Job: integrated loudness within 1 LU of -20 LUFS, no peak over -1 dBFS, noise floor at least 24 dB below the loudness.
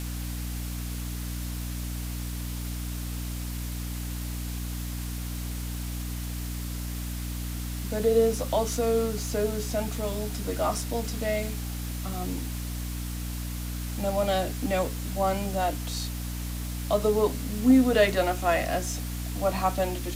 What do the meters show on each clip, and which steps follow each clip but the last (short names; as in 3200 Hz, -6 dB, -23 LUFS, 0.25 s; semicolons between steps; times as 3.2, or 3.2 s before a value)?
hum 60 Hz; harmonics up to 300 Hz; hum level -31 dBFS; noise floor -33 dBFS; noise floor target -53 dBFS; loudness -29.0 LUFS; peak -9.5 dBFS; loudness target -20.0 LUFS
-> de-hum 60 Hz, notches 5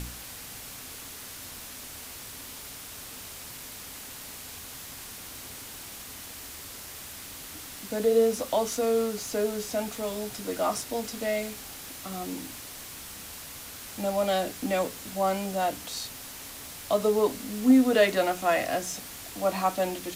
hum none; noise floor -43 dBFS; noise floor target -54 dBFS
-> denoiser 11 dB, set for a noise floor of -43 dBFS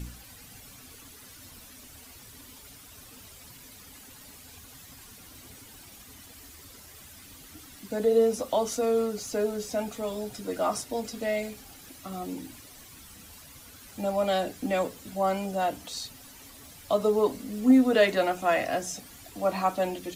noise floor -50 dBFS; noise floor target -52 dBFS
-> denoiser 6 dB, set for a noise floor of -50 dBFS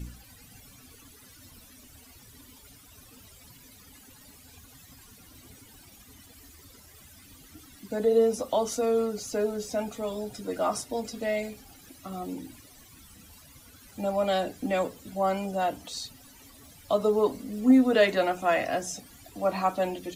noise floor -53 dBFS; loudness -27.5 LUFS; peak -10.0 dBFS; loudness target -20.0 LUFS
-> gain +7.5 dB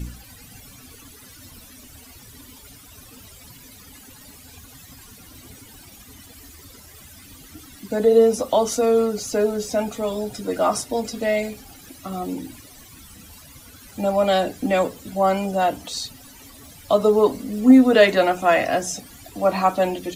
loudness -20.0 LUFS; peak -2.5 dBFS; noise floor -46 dBFS